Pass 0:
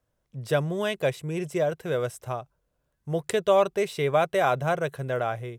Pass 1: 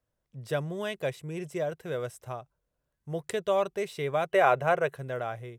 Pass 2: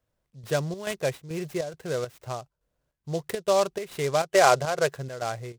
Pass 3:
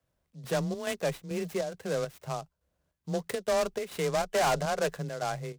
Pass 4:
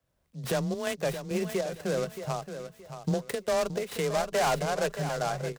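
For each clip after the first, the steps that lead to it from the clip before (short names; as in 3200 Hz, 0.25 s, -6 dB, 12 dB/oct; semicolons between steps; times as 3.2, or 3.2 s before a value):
spectral gain 4.33–4.94, 350–3000 Hz +7 dB; bell 1900 Hz +2 dB 0.21 oct; gain -6 dB
chopper 2.3 Hz, depth 60%, duty 70%; noise-modulated delay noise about 4800 Hz, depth 0.04 ms; gain +4 dB
soft clip -22.5 dBFS, distortion -7 dB; frequency shift +21 Hz
recorder AGC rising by 16 dB/s; feedback echo 0.623 s, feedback 28%, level -10 dB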